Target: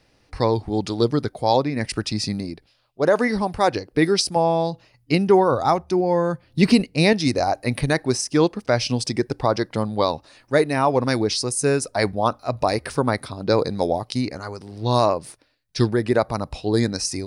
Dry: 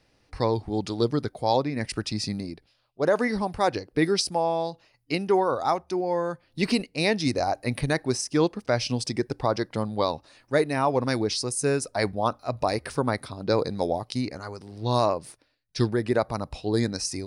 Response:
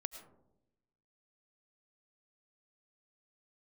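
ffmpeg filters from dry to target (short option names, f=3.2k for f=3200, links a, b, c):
-filter_complex "[0:a]asettb=1/sr,asplit=3[a][b][c];[a]atrim=end=4.364[d];[b]atrim=start=4.36:end=7.13,asetpts=PTS-STARTPTS,afade=t=in:d=0.004:c=qsin,afade=t=out:st=2.766:d=0.004:c=qsin,equalizer=f=95:w=0.48:g=9.5[e];[c]atrim=start=7.126[f];[d][e]acrossfade=d=0.004:c1=hsin:c2=qsin[g];[g][f]acrossfade=d=0.004:c1=qsin:c2=hsin,volume=4.5dB"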